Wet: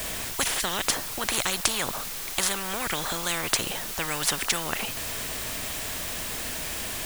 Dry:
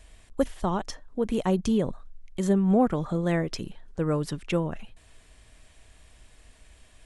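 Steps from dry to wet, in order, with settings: in parallel at -6 dB: requantised 8-bit, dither triangular; on the sum: spectral compressor 10:1; gain +4.5 dB

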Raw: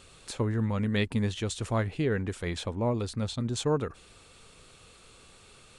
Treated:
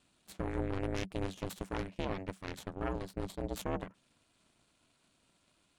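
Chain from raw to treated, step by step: added harmonics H 3 -11 dB, 4 -10 dB, 6 -22 dB, 8 -35 dB, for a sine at -16 dBFS; ring modulator 190 Hz; limiter -24.5 dBFS, peak gain reduction 10 dB; gain +1.5 dB

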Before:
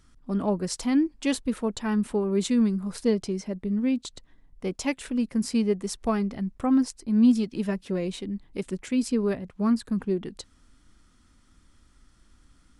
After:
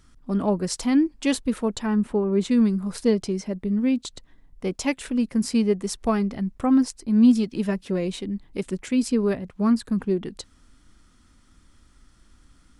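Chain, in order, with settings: 1.85–2.5 high shelf 2400 Hz -> 3800 Hz -11.5 dB; gain +3 dB

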